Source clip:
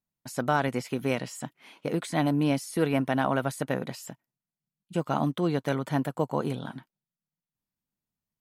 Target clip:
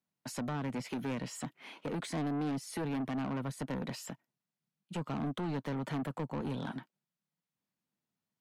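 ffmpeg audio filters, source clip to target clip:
-filter_complex "[0:a]highpass=150,highshelf=f=7.3k:g=-11,acrossover=split=290[a][b];[b]acompressor=threshold=-35dB:ratio=12[c];[a][c]amix=inputs=2:normalize=0,asoftclip=type=tanh:threshold=-35dB,volume=3dB"

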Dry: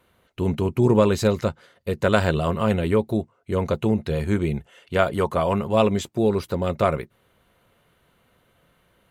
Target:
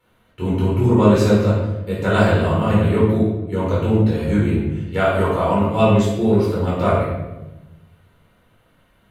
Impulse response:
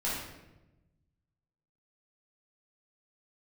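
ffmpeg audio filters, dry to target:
-filter_complex "[1:a]atrim=start_sample=2205[a];[0:a][a]afir=irnorm=-1:irlink=0,volume=-3.5dB"

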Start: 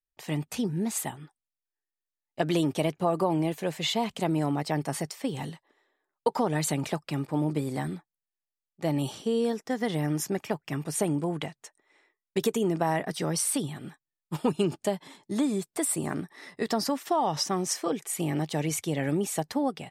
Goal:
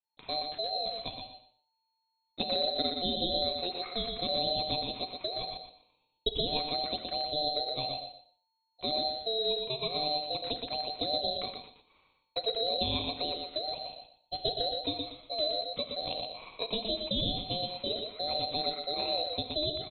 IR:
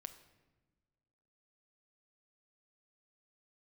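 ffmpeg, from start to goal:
-filter_complex "[1:a]atrim=start_sample=2205,atrim=end_sample=6174[a];[0:a][a]afir=irnorm=-1:irlink=0,asplit=2[b][c];[c]acompressor=threshold=-40dB:ratio=6,volume=0dB[d];[b][d]amix=inputs=2:normalize=0,aecho=1:1:120|240|360:0.531|0.117|0.0257,lowpass=f=2.2k:t=q:w=0.5098,lowpass=f=2.2k:t=q:w=0.6013,lowpass=f=2.2k:t=q:w=0.9,lowpass=f=2.2k:t=q:w=2.563,afreqshift=-2600,aeval=exprs='val(0)*sin(2*PI*1700*n/s)':c=same"

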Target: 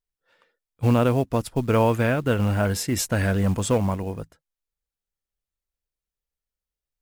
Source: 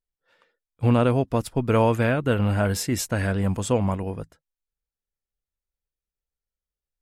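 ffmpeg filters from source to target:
-filter_complex "[0:a]asettb=1/sr,asplit=3[a][b][c];[a]atrim=end=2.964[d];[b]atrim=start=2.96:end=3.78,asetpts=PTS-STARTPTS,afade=t=in:d=0.004:c=qsin,afade=t=out:st=0.816:d=0.004:c=qsin,aeval=exprs='0.335*(cos(1*acos(clip(val(0)/0.335,-1,1)))-cos(1*PI/2))+0.0299*(cos(5*acos(clip(val(0)/0.335,-1,1)))-cos(5*PI/2))+0.00266*(cos(7*acos(clip(val(0)/0.335,-1,1)))-cos(7*PI/2))':c=same[e];[c]atrim=start=3.776[f];[d][e]acrossfade=d=0.004:c1=hsin:c2=qsin[g];[g][f]acrossfade=d=0.004:c1=qsin:c2=hsin,acrusher=bits=7:mode=log:mix=0:aa=0.000001"

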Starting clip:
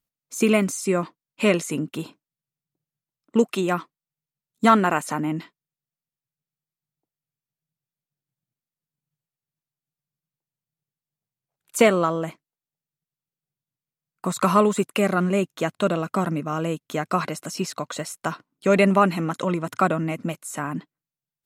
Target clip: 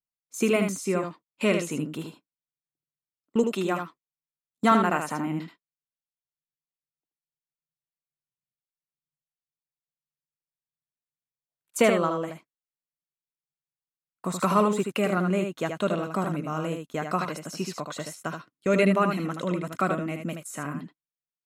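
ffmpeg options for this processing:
-filter_complex "[0:a]agate=range=-12dB:threshold=-38dB:ratio=16:detection=peak,asettb=1/sr,asplit=3[a][b][c];[a]atrim=end=18.074[d];[b]atrim=start=18.07:end=20.75,asetpts=PTS-STARTPTS,afade=t=in:d=0.004:c=qsin,afade=t=out:st=2.676:d=0.004:c=qsin,equalizer=f=870:t=o:w=0.38:g=-7.5[e];[c]atrim=start=20.746[f];[d][e]acrossfade=d=0.004:c1=hsin:c2=qsin[g];[g][f]acrossfade=d=0.004:c1=qsin:c2=hsin,aecho=1:1:77:0.501,adynamicequalizer=threshold=0.00562:dfrequency=9000:dqfactor=0.83:tfrequency=9000:tqfactor=0.83:attack=5:release=100:ratio=0.375:range=2:mode=cutabove:tftype=bell,volume=-4.5dB"

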